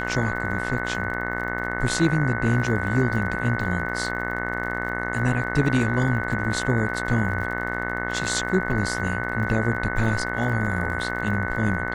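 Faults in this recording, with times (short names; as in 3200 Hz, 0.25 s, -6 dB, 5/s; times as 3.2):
buzz 60 Hz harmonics 36 -30 dBFS
crackle 48/s -34 dBFS
tone 1500 Hz -30 dBFS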